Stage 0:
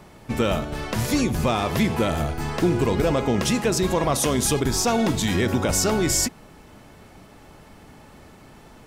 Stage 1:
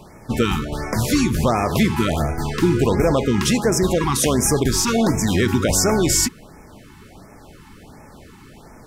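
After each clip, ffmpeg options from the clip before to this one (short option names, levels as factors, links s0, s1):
-af "afftfilt=real='re*(1-between(b*sr/1024,540*pow(3700/540,0.5+0.5*sin(2*PI*1.4*pts/sr))/1.41,540*pow(3700/540,0.5+0.5*sin(2*PI*1.4*pts/sr))*1.41))':imag='im*(1-between(b*sr/1024,540*pow(3700/540,0.5+0.5*sin(2*PI*1.4*pts/sr))/1.41,540*pow(3700/540,0.5+0.5*sin(2*PI*1.4*pts/sr))*1.41))':win_size=1024:overlap=0.75,volume=1.58"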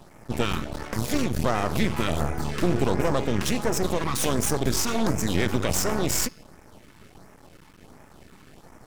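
-af "bandreject=f=434.6:t=h:w=4,bandreject=f=869.2:t=h:w=4,bandreject=f=1303.8:t=h:w=4,bandreject=f=1738.4:t=h:w=4,bandreject=f=2173:t=h:w=4,bandreject=f=2607.6:t=h:w=4,bandreject=f=3042.2:t=h:w=4,bandreject=f=3476.8:t=h:w=4,bandreject=f=3911.4:t=h:w=4,bandreject=f=4346:t=h:w=4,bandreject=f=4780.6:t=h:w=4,bandreject=f=5215.2:t=h:w=4,bandreject=f=5649.8:t=h:w=4,bandreject=f=6084.4:t=h:w=4,bandreject=f=6519:t=h:w=4,aeval=exprs='max(val(0),0)':c=same,volume=0.75"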